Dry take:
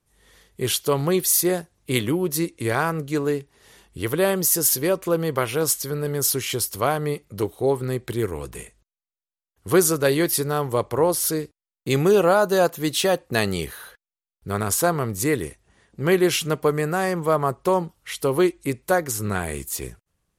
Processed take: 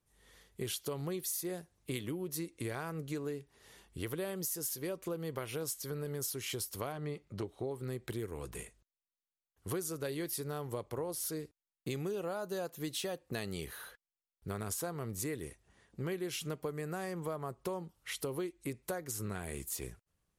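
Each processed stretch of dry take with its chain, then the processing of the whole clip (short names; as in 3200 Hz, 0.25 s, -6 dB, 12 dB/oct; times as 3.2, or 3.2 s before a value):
6.92–7.71 air absorption 74 m + notch 470 Hz, Q 9.6
whole clip: dynamic EQ 1100 Hz, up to -4 dB, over -31 dBFS, Q 0.75; compressor 6:1, threshold -28 dBFS; gain -7.5 dB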